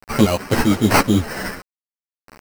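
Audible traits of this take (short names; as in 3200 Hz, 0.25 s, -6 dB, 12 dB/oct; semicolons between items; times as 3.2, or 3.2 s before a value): aliases and images of a low sample rate 3500 Hz, jitter 0%; random-step tremolo 4 Hz, depth 65%; a quantiser's noise floor 6-bit, dither none; a shimmering, thickened sound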